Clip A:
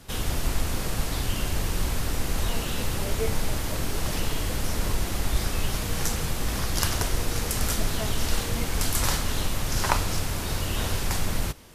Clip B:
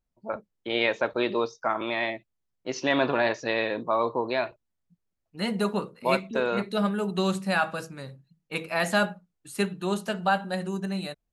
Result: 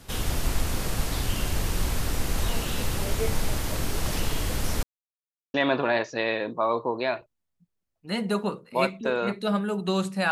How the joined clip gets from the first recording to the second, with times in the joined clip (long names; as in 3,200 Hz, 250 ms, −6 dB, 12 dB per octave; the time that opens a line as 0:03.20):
clip A
0:04.83–0:05.54: silence
0:05.54: continue with clip B from 0:02.84